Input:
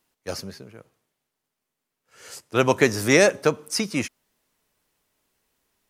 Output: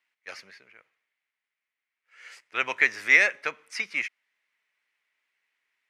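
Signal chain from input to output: band-pass 2100 Hz, Q 3.7; gain +6.5 dB

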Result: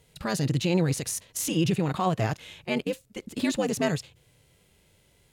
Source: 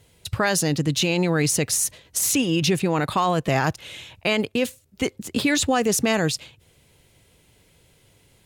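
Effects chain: granular stretch 0.63×, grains 20 ms; harmonic-percussive split percussive -11 dB

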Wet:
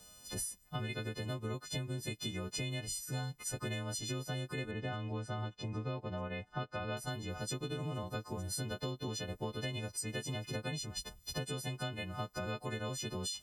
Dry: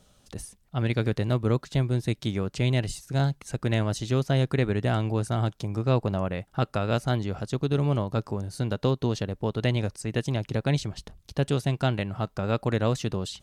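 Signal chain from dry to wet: frequency quantiser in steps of 3 st; 4.71–6.97 LPF 3400 Hz 12 dB/oct; compressor 12:1, threshold -33 dBFS, peak gain reduction 16 dB; gain -2.5 dB

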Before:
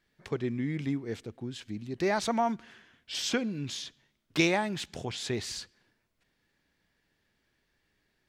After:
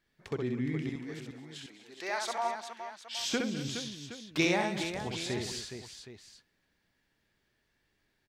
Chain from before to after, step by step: 0.89–3.19 HPF 740 Hz 12 dB/oct; tapped delay 64/204/212/248/417/769 ms -4/-18.5/-18/-15.5/-9/-14.5 dB; gain -3 dB

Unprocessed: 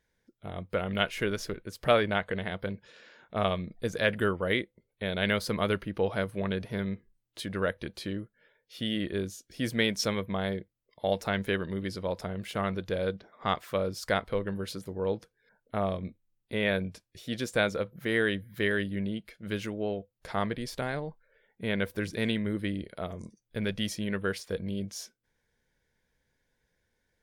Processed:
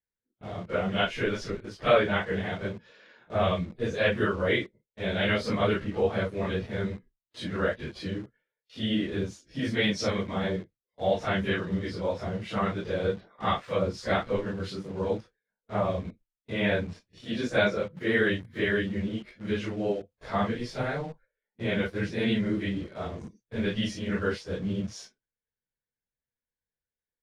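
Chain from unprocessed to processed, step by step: phase scrambler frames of 0.1 s; gate with hold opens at -47 dBFS; in parallel at -9 dB: bit-crush 7-bit; on the sum: air absorption 95 m

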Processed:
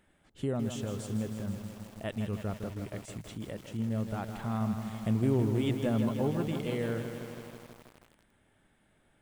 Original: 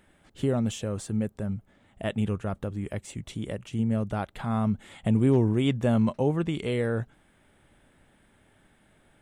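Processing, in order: lo-fi delay 0.161 s, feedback 80%, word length 7-bit, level -7.5 dB; gain -6.5 dB

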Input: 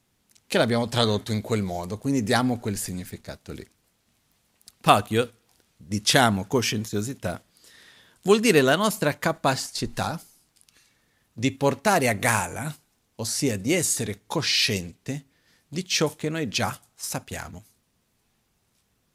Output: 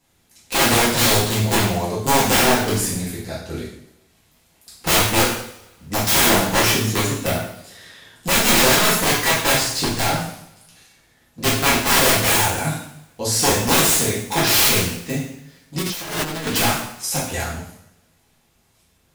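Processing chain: wrapped overs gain 18 dB; two-slope reverb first 0.7 s, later 2 s, from -26 dB, DRR -8.5 dB; 15.81–16.47 negative-ratio compressor -27 dBFS, ratio -1

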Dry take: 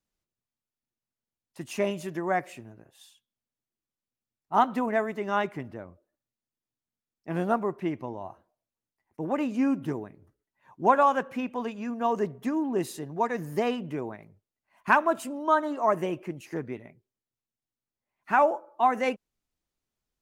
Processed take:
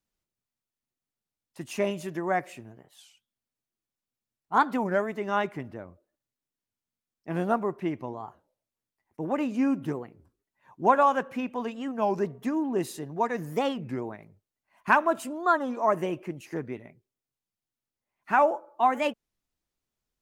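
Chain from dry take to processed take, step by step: record warp 33 1/3 rpm, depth 250 cents

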